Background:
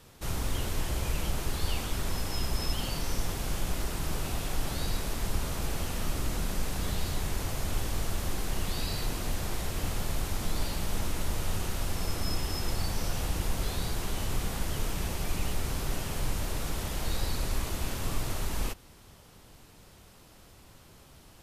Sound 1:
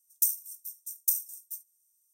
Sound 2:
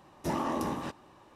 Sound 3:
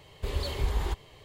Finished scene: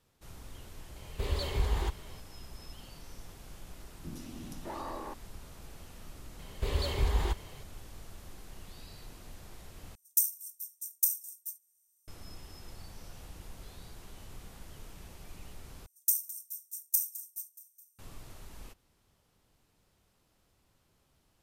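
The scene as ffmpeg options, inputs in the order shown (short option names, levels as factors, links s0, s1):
-filter_complex "[3:a]asplit=2[s0][s1];[1:a]asplit=2[s2][s3];[0:a]volume=0.141[s4];[2:a]acrossover=split=290|2700[s5][s6][s7];[s7]adelay=120[s8];[s6]adelay=610[s9];[s5][s9][s8]amix=inputs=3:normalize=0[s10];[s3]aecho=1:1:211|422|633|844|1055:0.141|0.0805|0.0459|0.0262|0.0149[s11];[s4]asplit=3[s12][s13][s14];[s12]atrim=end=9.954[s15];[s2]atrim=end=2.13,asetpts=PTS-STARTPTS,volume=0.891[s16];[s13]atrim=start=12.076:end=15.864[s17];[s11]atrim=end=2.13,asetpts=PTS-STARTPTS,volume=0.794[s18];[s14]atrim=start=17.986[s19];[s0]atrim=end=1.24,asetpts=PTS-STARTPTS,volume=0.841,afade=t=in:d=0.004:c=hsin,afade=t=out:st=1.236:d=0.004:c=hsin,adelay=960[s20];[s10]atrim=end=1.35,asetpts=PTS-STARTPTS,volume=0.447,afade=t=in:d=0.004:c=hsin,afade=t=out:st=1.346:d=0.004:c=hsin,adelay=3790[s21];[s1]atrim=end=1.24,asetpts=PTS-STARTPTS,afade=t=in:d=0.004:c=hsin,afade=t=out:st=1.236:d=0.004:c=hsin,adelay=6390[s22];[s15][s16]acrossfade=d=0.004:c1=hsin:c2=hsin[s23];[s23][s17]acrossfade=d=0.004:c1=hsin:c2=hsin[s24];[s24][s18]acrossfade=d=0.004:c1=hsin:c2=hsin[s25];[s25][s19]acrossfade=d=0.004:c1=hsin:c2=hsin[s26];[s26][s20][s21][s22]amix=inputs=4:normalize=0"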